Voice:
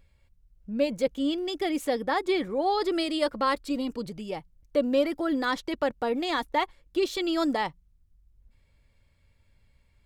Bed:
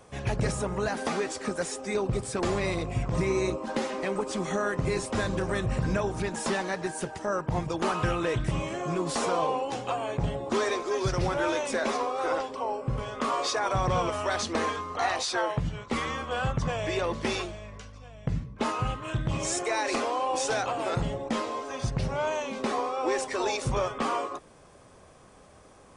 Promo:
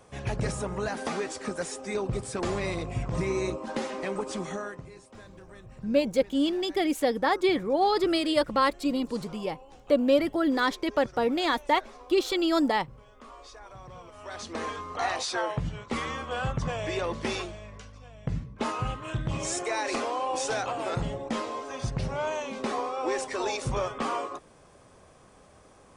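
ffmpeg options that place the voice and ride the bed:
-filter_complex "[0:a]adelay=5150,volume=2dB[a];[1:a]volume=16.5dB,afade=t=out:st=4.34:d=0.54:silence=0.125893,afade=t=in:st=14.11:d=0.88:silence=0.11885[b];[a][b]amix=inputs=2:normalize=0"

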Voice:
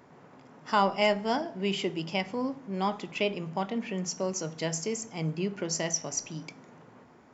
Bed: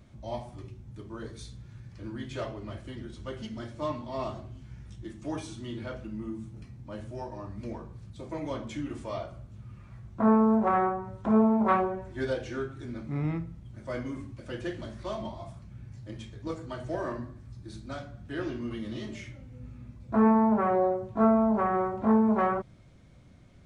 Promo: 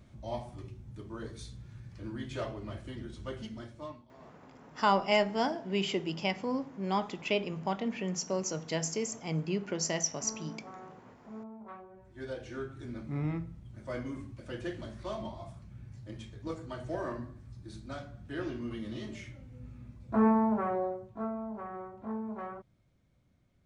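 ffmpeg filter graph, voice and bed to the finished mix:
-filter_complex "[0:a]adelay=4100,volume=-1.5dB[a];[1:a]volume=19dB,afade=t=out:st=3.31:d=0.77:silence=0.0794328,afade=t=in:st=11.88:d=0.98:silence=0.0944061,afade=t=out:st=20.24:d=1.06:silence=0.251189[b];[a][b]amix=inputs=2:normalize=0"

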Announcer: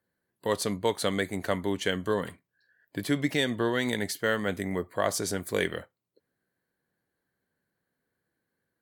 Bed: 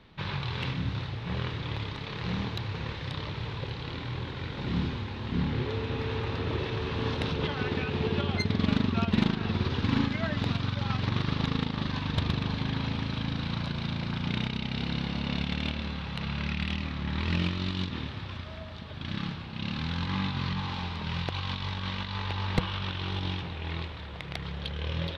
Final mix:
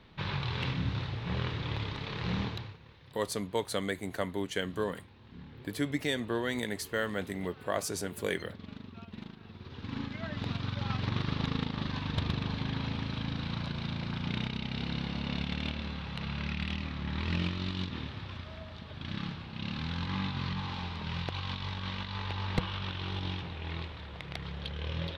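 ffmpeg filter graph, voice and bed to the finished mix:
-filter_complex "[0:a]adelay=2700,volume=-5dB[a];[1:a]volume=15.5dB,afade=t=out:st=2.43:d=0.34:silence=0.112202,afade=t=in:st=9.59:d=1.27:silence=0.149624[b];[a][b]amix=inputs=2:normalize=0"

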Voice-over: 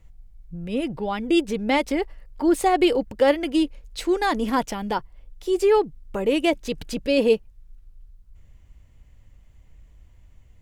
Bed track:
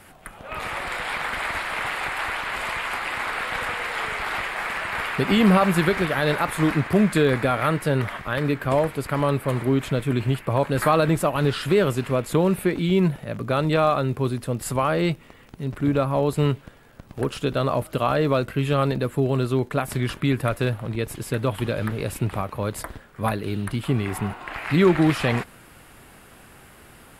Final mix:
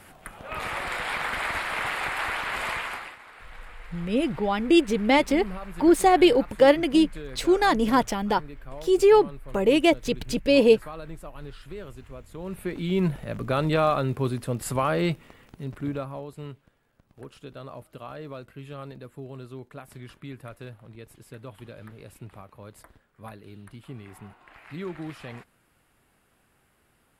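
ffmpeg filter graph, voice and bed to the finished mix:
-filter_complex "[0:a]adelay=3400,volume=1.5dB[a];[1:a]volume=16.5dB,afade=t=out:st=2.72:d=0.45:silence=0.112202,afade=t=in:st=12.37:d=0.81:silence=0.125893,afade=t=out:st=15.26:d=1.01:silence=0.16788[b];[a][b]amix=inputs=2:normalize=0"

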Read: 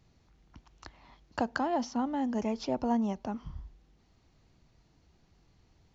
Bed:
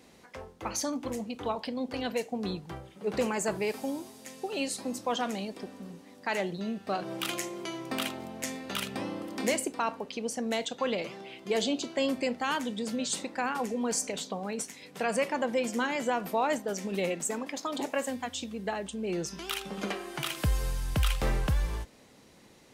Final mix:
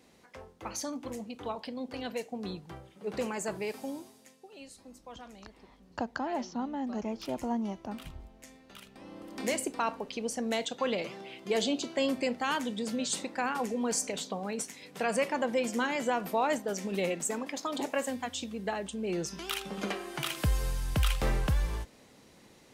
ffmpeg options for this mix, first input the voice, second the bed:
-filter_complex "[0:a]adelay=4600,volume=-3.5dB[a];[1:a]volume=12dB,afade=t=out:st=3.97:d=0.42:silence=0.237137,afade=t=in:st=8.98:d=0.74:silence=0.149624[b];[a][b]amix=inputs=2:normalize=0"

